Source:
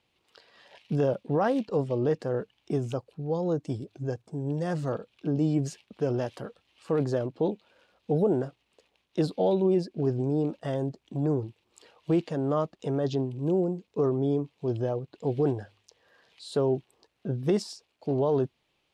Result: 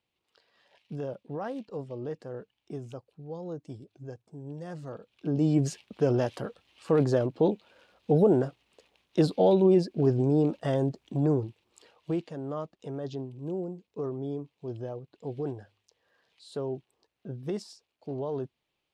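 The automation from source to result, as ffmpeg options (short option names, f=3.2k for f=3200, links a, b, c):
-af "volume=3dB,afade=t=in:st=4.94:d=0.71:silence=0.223872,afade=t=out:st=11.02:d=1.3:silence=0.281838"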